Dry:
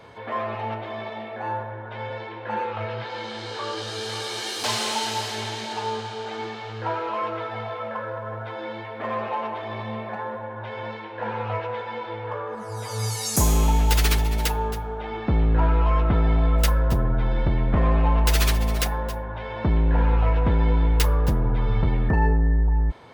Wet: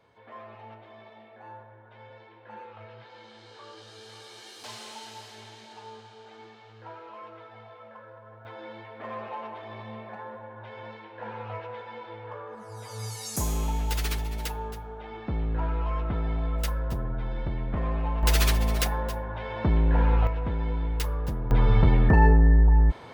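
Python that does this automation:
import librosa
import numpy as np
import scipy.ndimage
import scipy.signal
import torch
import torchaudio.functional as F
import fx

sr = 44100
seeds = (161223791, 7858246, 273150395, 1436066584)

y = fx.gain(x, sr, db=fx.steps((0.0, -16.5), (8.45, -9.0), (18.23, -2.0), (20.27, -9.0), (21.51, 2.5)))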